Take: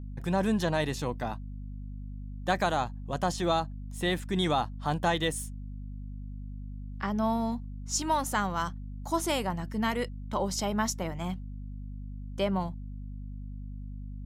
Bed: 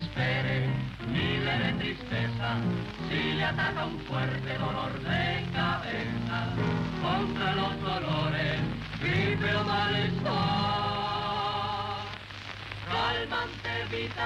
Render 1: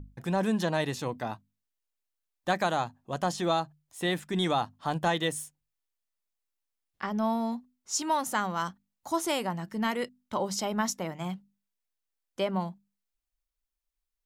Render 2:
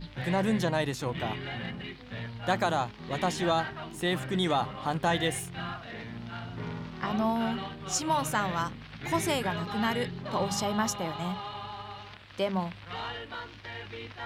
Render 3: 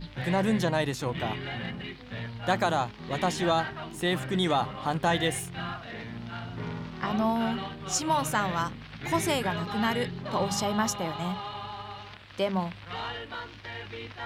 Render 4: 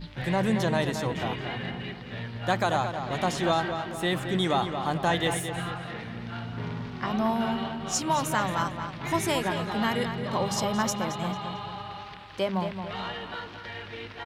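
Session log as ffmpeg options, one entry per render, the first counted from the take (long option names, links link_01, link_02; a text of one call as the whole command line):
ffmpeg -i in.wav -af "bandreject=frequency=50:width_type=h:width=6,bandreject=frequency=100:width_type=h:width=6,bandreject=frequency=150:width_type=h:width=6,bandreject=frequency=200:width_type=h:width=6,bandreject=frequency=250:width_type=h:width=6" out.wav
ffmpeg -i in.wav -i bed.wav -filter_complex "[1:a]volume=-8.5dB[link_01];[0:a][link_01]amix=inputs=2:normalize=0" out.wav
ffmpeg -i in.wav -af "volume=1.5dB" out.wav
ffmpeg -i in.wav -filter_complex "[0:a]asplit=2[link_01][link_02];[link_02]adelay=223,lowpass=frequency=3800:poles=1,volume=-7.5dB,asplit=2[link_03][link_04];[link_04]adelay=223,lowpass=frequency=3800:poles=1,volume=0.5,asplit=2[link_05][link_06];[link_06]adelay=223,lowpass=frequency=3800:poles=1,volume=0.5,asplit=2[link_07][link_08];[link_08]adelay=223,lowpass=frequency=3800:poles=1,volume=0.5,asplit=2[link_09][link_10];[link_10]adelay=223,lowpass=frequency=3800:poles=1,volume=0.5,asplit=2[link_11][link_12];[link_12]adelay=223,lowpass=frequency=3800:poles=1,volume=0.5[link_13];[link_01][link_03][link_05][link_07][link_09][link_11][link_13]amix=inputs=7:normalize=0" out.wav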